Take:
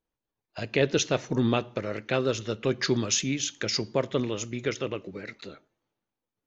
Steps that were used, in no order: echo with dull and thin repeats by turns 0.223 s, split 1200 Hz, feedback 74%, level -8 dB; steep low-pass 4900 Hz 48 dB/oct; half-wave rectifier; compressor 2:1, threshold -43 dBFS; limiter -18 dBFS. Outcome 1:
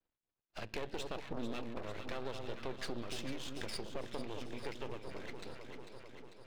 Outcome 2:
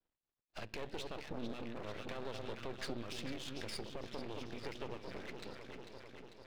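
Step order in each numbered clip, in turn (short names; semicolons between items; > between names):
steep low-pass > half-wave rectifier > echo with dull and thin repeats by turns > limiter > compressor; echo with dull and thin repeats by turns > limiter > steep low-pass > compressor > half-wave rectifier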